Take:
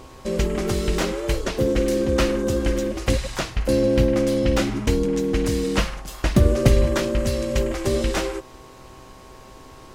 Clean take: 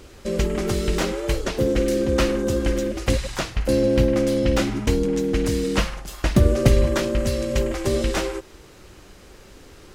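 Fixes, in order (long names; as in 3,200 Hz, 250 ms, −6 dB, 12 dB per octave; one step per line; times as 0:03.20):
hum removal 129.6 Hz, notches 8
notch filter 1,100 Hz, Q 30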